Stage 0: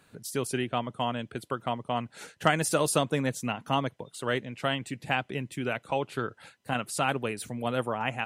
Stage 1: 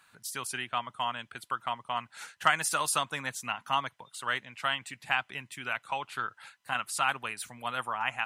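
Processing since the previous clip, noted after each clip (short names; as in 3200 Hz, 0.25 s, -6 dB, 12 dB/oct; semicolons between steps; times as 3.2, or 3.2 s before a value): resonant low shelf 690 Hz -13.5 dB, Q 1.5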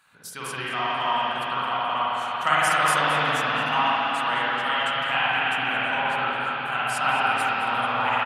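echo 0.218 s -14.5 dB; reverb RT60 5.9 s, pre-delay 40 ms, DRR -10.5 dB; gain -1 dB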